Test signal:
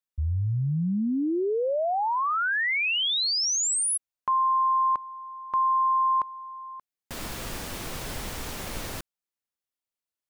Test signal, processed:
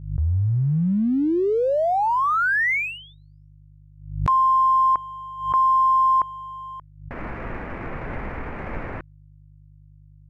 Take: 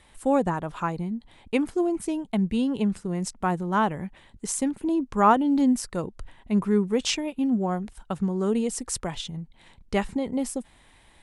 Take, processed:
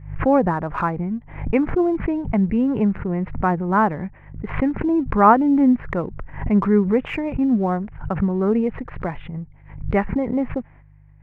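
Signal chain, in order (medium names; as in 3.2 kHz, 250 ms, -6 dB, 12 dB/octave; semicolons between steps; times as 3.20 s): steep low-pass 2.3 kHz 48 dB/octave; gate -52 dBFS, range -16 dB; in parallel at -11.5 dB: crossover distortion -41.5 dBFS; on the sum: mains buzz 50 Hz, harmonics 3, -54 dBFS -2 dB/octave; swell ahead of each attack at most 97 dB/s; trim +3.5 dB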